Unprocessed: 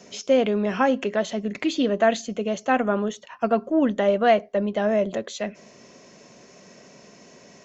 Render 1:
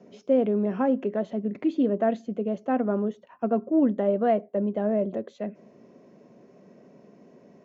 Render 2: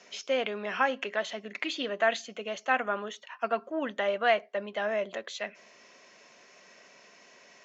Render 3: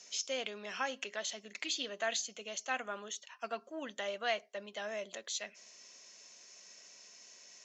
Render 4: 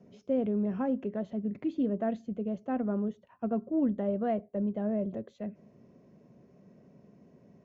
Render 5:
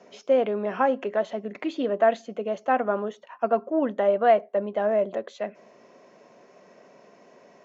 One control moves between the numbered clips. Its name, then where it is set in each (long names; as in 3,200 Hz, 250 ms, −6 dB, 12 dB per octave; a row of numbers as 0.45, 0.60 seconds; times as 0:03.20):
resonant band-pass, frequency: 270, 2,100, 6,700, 100, 750 Hertz